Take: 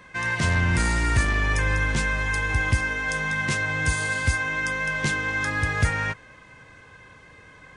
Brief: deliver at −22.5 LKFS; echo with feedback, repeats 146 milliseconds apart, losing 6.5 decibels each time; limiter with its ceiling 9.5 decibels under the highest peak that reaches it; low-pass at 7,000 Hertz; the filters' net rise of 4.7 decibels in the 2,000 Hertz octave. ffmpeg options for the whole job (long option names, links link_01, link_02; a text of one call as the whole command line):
ffmpeg -i in.wav -af "lowpass=7000,equalizer=frequency=2000:width_type=o:gain=6,alimiter=limit=-16dB:level=0:latency=1,aecho=1:1:146|292|438|584|730|876:0.473|0.222|0.105|0.0491|0.0231|0.0109" out.wav